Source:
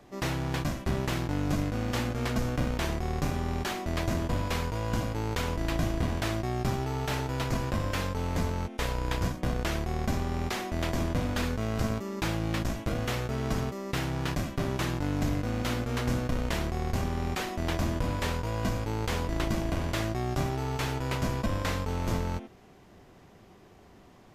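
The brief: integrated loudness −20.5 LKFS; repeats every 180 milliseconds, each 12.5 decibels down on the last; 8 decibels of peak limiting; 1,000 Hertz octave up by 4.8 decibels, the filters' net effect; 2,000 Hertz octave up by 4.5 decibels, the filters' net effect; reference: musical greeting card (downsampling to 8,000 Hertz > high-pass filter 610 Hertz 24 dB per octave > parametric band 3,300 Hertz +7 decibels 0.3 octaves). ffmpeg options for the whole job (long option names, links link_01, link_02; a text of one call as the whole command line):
ffmpeg -i in.wav -af "equalizer=frequency=1000:width_type=o:gain=5.5,equalizer=frequency=2000:width_type=o:gain=3.5,alimiter=limit=-21.5dB:level=0:latency=1,aecho=1:1:180|360|540:0.237|0.0569|0.0137,aresample=8000,aresample=44100,highpass=frequency=610:width=0.5412,highpass=frequency=610:width=1.3066,equalizer=frequency=3300:width_type=o:width=0.3:gain=7,volume=15dB" out.wav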